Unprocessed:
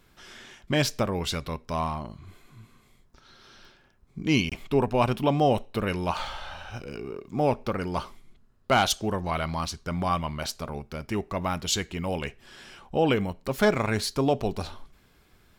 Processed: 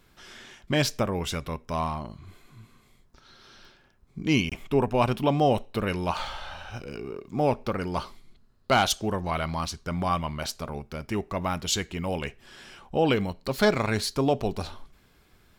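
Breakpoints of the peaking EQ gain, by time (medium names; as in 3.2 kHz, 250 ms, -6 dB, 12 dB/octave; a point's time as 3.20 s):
peaking EQ 4.3 kHz 0.36 oct
+1 dB
from 0.97 s -7.5 dB
from 1.73 s +1.5 dB
from 4.33 s -6.5 dB
from 4.94 s +1 dB
from 8.02 s +8.5 dB
from 8.76 s -0.5 dB
from 13.05 s +10 dB
from 13.99 s +0.5 dB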